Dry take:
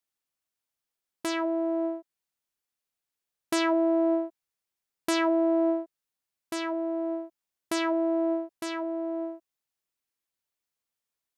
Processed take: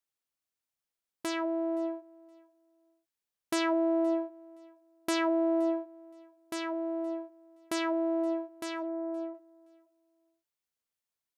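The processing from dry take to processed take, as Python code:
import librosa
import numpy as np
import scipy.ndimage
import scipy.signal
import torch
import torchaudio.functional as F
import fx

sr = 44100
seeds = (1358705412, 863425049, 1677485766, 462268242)

y = fx.lowpass(x, sr, hz=2000.0, slope=24, at=(8.82, 9.33), fade=0.02)
y = fx.echo_feedback(y, sr, ms=520, feedback_pct=20, wet_db=-24.0)
y = y * 10.0 ** (-3.5 / 20.0)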